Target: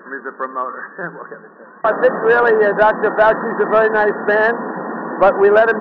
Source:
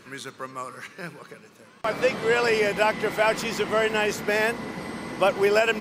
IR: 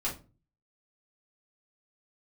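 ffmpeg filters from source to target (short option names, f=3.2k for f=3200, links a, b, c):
-filter_complex "[0:a]asplit=2[a][b];[1:a]atrim=start_sample=2205[c];[b][c]afir=irnorm=-1:irlink=0,volume=-20.5dB[d];[a][d]amix=inputs=2:normalize=0,afftfilt=real='re*between(b*sr/4096,160,1900)':imag='im*between(b*sr/4096,160,1900)':win_size=4096:overlap=0.75,asplit=2[e][f];[f]highpass=f=720:p=1,volume=13dB,asoftclip=type=tanh:threshold=-7.5dB[g];[e][g]amix=inputs=2:normalize=0,lowpass=f=1.4k:p=1,volume=-6dB,volume=7.5dB"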